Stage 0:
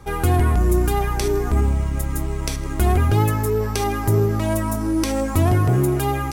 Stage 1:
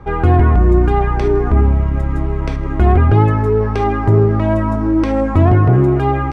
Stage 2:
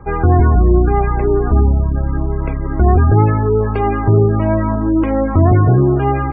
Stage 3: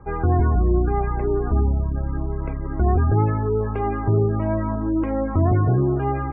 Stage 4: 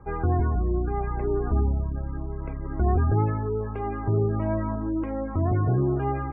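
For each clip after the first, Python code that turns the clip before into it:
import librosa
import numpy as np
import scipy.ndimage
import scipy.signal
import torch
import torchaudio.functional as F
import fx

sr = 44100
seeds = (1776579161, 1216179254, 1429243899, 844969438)

y1 = scipy.signal.sosfilt(scipy.signal.butter(2, 1800.0, 'lowpass', fs=sr, output='sos'), x)
y1 = y1 * 10.0 ** (6.5 / 20.0)
y2 = fx.spec_gate(y1, sr, threshold_db=-30, keep='strong')
y3 = scipy.signal.sosfilt(scipy.signal.butter(2, 2200.0, 'lowpass', fs=sr, output='sos'), y2)
y3 = y3 * 10.0 ** (-7.5 / 20.0)
y4 = y3 * (1.0 - 0.31 / 2.0 + 0.31 / 2.0 * np.cos(2.0 * np.pi * 0.67 * (np.arange(len(y3)) / sr)))
y4 = y4 * 10.0 ** (-3.5 / 20.0)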